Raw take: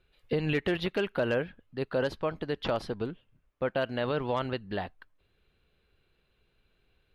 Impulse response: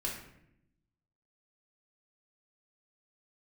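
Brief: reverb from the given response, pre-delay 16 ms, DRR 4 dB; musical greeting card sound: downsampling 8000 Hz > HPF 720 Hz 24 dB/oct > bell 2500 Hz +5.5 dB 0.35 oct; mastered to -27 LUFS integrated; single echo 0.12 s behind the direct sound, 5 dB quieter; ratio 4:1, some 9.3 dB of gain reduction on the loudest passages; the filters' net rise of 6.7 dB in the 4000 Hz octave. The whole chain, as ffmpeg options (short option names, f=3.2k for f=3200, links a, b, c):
-filter_complex "[0:a]equalizer=f=4k:t=o:g=7.5,acompressor=threshold=-35dB:ratio=4,aecho=1:1:120:0.562,asplit=2[a][b];[1:a]atrim=start_sample=2205,adelay=16[c];[b][c]afir=irnorm=-1:irlink=0,volume=-6.5dB[d];[a][d]amix=inputs=2:normalize=0,aresample=8000,aresample=44100,highpass=f=720:w=0.5412,highpass=f=720:w=1.3066,equalizer=f=2.5k:t=o:w=0.35:g=5.5,volume=13.5dB"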